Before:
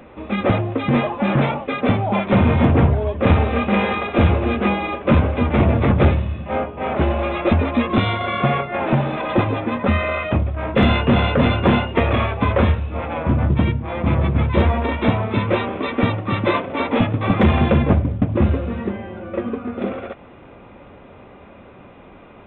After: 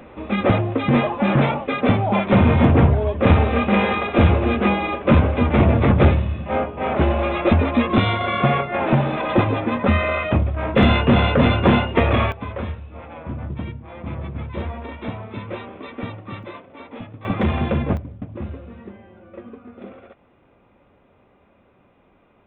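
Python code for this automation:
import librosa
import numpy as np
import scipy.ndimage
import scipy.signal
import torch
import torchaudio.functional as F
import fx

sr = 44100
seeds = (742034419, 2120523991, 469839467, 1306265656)

y = fx.gain(x, sr, db=fx.steps((0.0, 0.5), (12.32, -12.0), (16.43, -18.0), (17.25, -5.5), (17.97, -14.0)))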